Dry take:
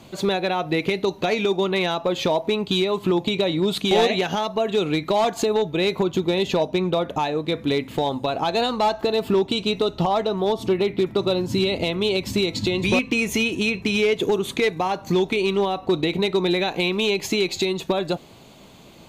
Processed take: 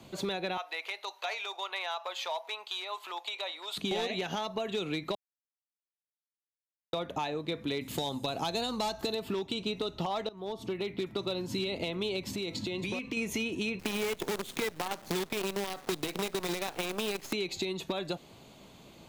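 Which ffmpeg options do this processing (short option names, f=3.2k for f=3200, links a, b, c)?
-filter_complex "[0:a]asettb=1/sr,asplit=3[a][b][c];[a]atrim=end=0.574[d];[b]atrim=start=0.57:end=3.77,asetpts=PTS-STARTPTS,afade=t=in:d=0.004:c=qsin,afade=t=out:st=3.196:d=0.004:c=qsin,highpass=f=760:w=0.5412,highpass=f=760:w=1.3066[e];[c]atrim=start=3.766[f];[d][e]acrossfade=d=0.004:c1=hsin:c2=qsin[g];[g][f]acrossfade=d=0.004:c1=qsin:c2=hsin,asettb=1/sr,asplit=3[h][i][j];[h]atrim=end=7.814[k];[i]atrim=start=7.81:end=9.15,asetpts=PTS-STARTPTS,afade=t=in:d=0.004:c=qsin,afade=t=out:st=1.336:d=0.004:c=qsin,bass=f=250:g=6,treble=f=4k:g=13[l];[j]atrim=start=9.146[m];[k][l]acrossfade=d=0.004:c1=hsin:c2=qsin[n];[n][m]acrossfade=d=0.004:c1=qsin:c2=hsin,asettb=1/sr,asplit=3[o][p][q];[o]atrim=end=12.274[r];[p]atrim=start=12.27:end=13.17,asetpts=PTS-STARTPTS,afade=t=in:d=0.004:c=qsin,afade=t=out:st=0.896:d=0.004:c=qsin,acompressor=threshold=-23dB:ratio=6:attack=3.2:release=140:knee=1:detection=peak[s];[q]atrim=start=13.166[t];[r][s]acrossfade=d=0.004:c1=hsin:c2=qsin[u];[u][t]acrossfade=d=0.004:c1=qsin:c2=hsin,asettb=1/sr,asplit=3[v][w][x];[v]atrim=end=13.794[y];[w]atrim=start=13.79:end=17.33,asetpts=PTS-STARTPTS,afade=t=in:d=0.004:c=qsin,afade=t=out:st=3.536:d=0.004:c=qsin,acrusher=bits=4:dc=4:mix=0:aa=0.000001[z];[x]atrim=start=17.326[aa];[y][z]acrossfade=d=0.004:c1=hsin:c2=qsin[ab];[ab][aa]acrossfade=d=0.004:c1=qsin:c2=hsin,asplit=4[ac][ad][ae][af];[ac]atrim=end=5.15,asetpts=PTS-STARTPTS,afade=t=out:st=5.146:d=0.004:c=hsin[ag];[ad]atrim=start=5.15:end=6.93,asetpts=PTS-STARTPTS,volume=0[ah];[ae]atrim=start=6.93:end=10.29,asetpts=PTS-STARTPTS,afade=t=in:d=0.004:c=hsin,afade=t=out:st=3.356:d=0.004:c=hsin:silence=0.112202[ai];[af]atrim=start=10.29,asetpts=PTS-STARTPTS,afade=t=in:d=1.02:c=qsin:silence=0.112202[aj];[ag][ah][ai][aj]concat=n=4:v=0:a=1,acrossover=split=140|1400[ak][al][am];[ak]acompressor=threshold=-45dB:ratio=4[an];[al]acompressor=threshold=-26dB:ratio=4[ao];[am]acompressor=threshold=-29dB:ratio=4[ap];[an][ao][ap]amix=inputs=3:normalize=0,volume=-6.5dB"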